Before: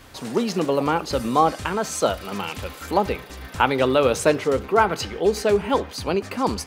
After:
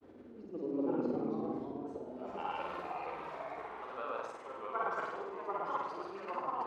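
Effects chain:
reversed playback
downward compressor 10 to 1, threshold −27 dBFS, peak gain reduction 16 dB
reversed playback
volume swells 519 ms
granular cloud, pitch spread up and down by 0 semitones
band-pass filter sweep 350 Hz → 1,100 Hz, 0:01.76–0:02.70
on a send: flutter between parallel walls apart 8.7 metres, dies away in 0.91 s
on the sum: delay with pitch and tempo change per echo 158 ms, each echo −2 semitones, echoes 2
level +1 dB

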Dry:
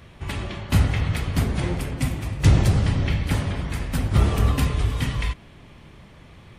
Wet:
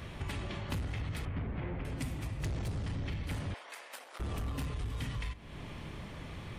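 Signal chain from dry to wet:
soft clipping −18 dBFS, distortion −10 dB
0:01.25–0:01.85: low-pass filter 2,600 Hz 24 dB per octave
feedback delay network reverb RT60 1 s, high-frequency decay 0.4×, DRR 18.5 dB
downward compressor 5 to 1, threshold −39 dBFS, peak gain reduction 17.5 dB
0:03.54–0:04.20: high-pass filter 540 Hz 24 dB per octave
level +2.5 dB

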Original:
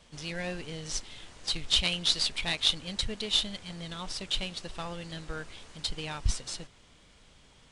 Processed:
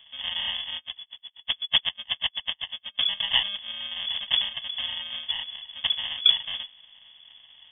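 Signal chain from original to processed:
sample-rate reduction 1,000 Hz, jitter 0%
voice inversion scrambler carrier 3,400 Hz
0:00.77–0:03.01: tremolo with a sine in dB 8.1 Hz, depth 37 dB
level +5 dB

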